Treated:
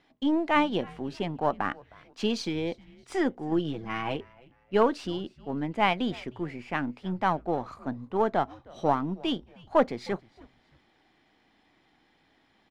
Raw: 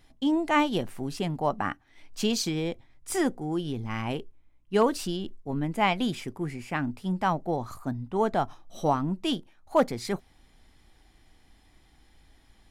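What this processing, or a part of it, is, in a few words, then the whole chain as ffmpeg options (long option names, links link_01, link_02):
crystal radio: -filter_complex "[0:a]highpass=200,lowpass=3500,aeval=exprs='if(lt(val(0),0),0.708*val(0),val(0))':channel_layout=same,asettb=1/sr,asplit=3[link_01][link_02][link_03];[link_01]atrim=end=3.514[link_04];[link_02]atrim=start=3.51:end=4.16,asetpts=PTS-STARTPTS,afade=type=in:duration=0.004:curve=qsin,afade=type=out:start_time=0.646:duration=0.004:curve=qsin,aecho=1:1:6.2:0.72,atrim=end_sample=28665[link_05];[link_03]atrim=start=4.156[link_06];[link_04][link_05]acrossfade=duration=0.004:curve1=hsin:curve2=qsin[link_07];[link_07][link_06]acrossfade=duration=0.004:curve1=qsin:curve2=hsin,asplit=3[link_08][link_09][link_10];[link_09]adelay=311,afreqshift=-130,volume=-23.5dB[link_11];[link_10]adelay=622,afreqshift=-260,volume=-32.6dB[link_12];[link_08][link_11][link_12]amix=inputs=3:normalize=0,volume=1.5dB"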